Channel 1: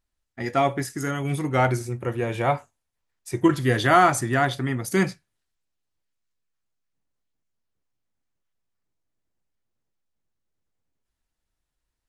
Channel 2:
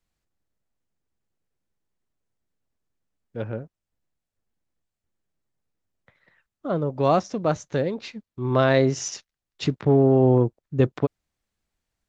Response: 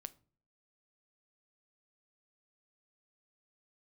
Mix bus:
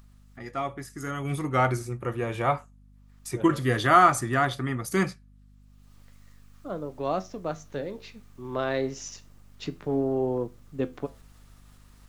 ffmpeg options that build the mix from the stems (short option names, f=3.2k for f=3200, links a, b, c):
-filter_complex "[0:a]acompressor=mode=upward:threshold=-30dB:ratio=2.5,equalizer=f=1.2k:w=7.7:g=10.5,volume=-3.5dB,afade=t=in:st=0.86:d=0.46:silence=0.421697[a];[1:a]highpass=180,flanger=delay=10:depth=7.7:regen=74:speed=0.29:shape=sinusoidal,volume=-6.5dB,asplit=2[b][c];[c]volume=-4dB[d];[2:a]atrim=start_sample=2205[e];[d][e]afir=irnorm=-1:irlink=0[f];[a][b][f]amix=inputs=3:normalize=0,aeval=exprs='val(0)+0.00224*(sin(2*PI*50*n/s)+sin(2*PI*2*50*n/s)/2+sin(2*PI*3*50*n/s)/3+sin(2*PI*4*50*n/s)/4+sin(2*PI*5*50*n/s)/5)':c=same"